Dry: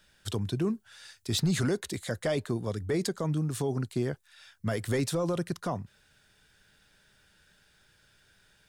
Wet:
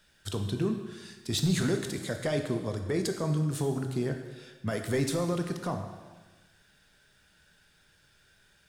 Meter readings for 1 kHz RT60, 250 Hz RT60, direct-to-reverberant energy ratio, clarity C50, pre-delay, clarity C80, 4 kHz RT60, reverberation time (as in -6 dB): 1.3 s, 1.4 s, 4.5 dB, 7.0 dB, 6 ms, 8.5 dB, 1.2 s, 1.3 s